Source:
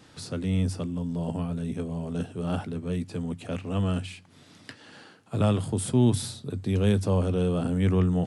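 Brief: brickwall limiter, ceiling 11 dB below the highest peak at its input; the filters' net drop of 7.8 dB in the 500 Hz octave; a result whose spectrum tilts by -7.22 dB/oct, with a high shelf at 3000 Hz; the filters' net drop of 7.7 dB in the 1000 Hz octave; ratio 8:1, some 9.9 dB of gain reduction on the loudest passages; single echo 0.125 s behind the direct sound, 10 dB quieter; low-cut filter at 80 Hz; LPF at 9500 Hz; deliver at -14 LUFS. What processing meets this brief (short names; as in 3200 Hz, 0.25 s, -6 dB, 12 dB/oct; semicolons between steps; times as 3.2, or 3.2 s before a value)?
HPF 80 Hz; LPF 9500 Hz; bell 500 Hz -8.5 dB; bell 1000 Hz -6.5 dB; high shelf 3000 Hz -7 dB; compressor 8:1, threshold -29 dBFS; limiter -32 dBFS; echo 0.125 s -10 dB; gain +26 dB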